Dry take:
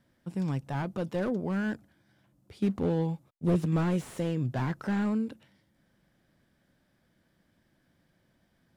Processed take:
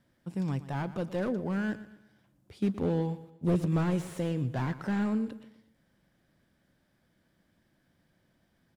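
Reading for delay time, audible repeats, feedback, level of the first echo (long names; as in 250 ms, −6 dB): 119 ms, 3, 41%, −15.5 dB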